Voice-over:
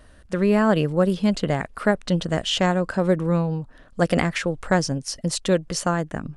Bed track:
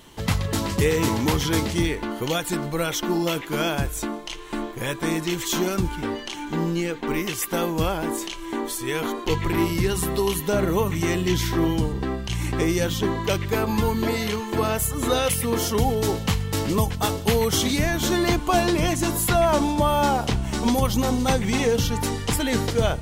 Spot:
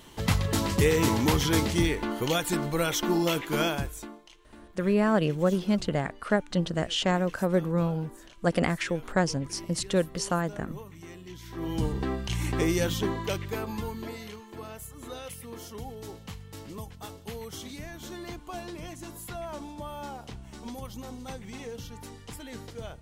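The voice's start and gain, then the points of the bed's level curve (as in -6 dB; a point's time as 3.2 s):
4.45 s, -5.0 dB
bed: 3.63 s -2 dB
4.38 s -22 dB
11.41 s -22 dB
11.85 s -3.5 dB
12.88 s -3.5 dB
14.53 s -18.5 dB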